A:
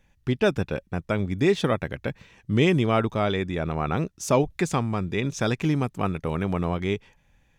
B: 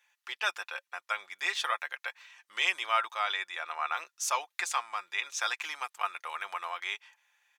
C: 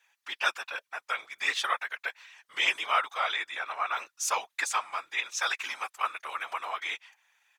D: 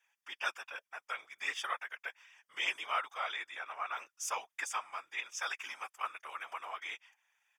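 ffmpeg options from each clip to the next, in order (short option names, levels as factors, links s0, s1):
-af "highpass=f=970:w=0.5412,highpass=f=970:w=1.3066,aecho=1:1:5.7:0.42"
-af "afftfilt=real='hypot(re,im)*cos(2*PI*random(0))':imag='hypot(re,im)*sin(2*PI*random(1))':win_size=512:overlap=0.75,volume=2.51"
-af "asuperstop=centerf=4100:order=4:qfactor=4,volume=0.398"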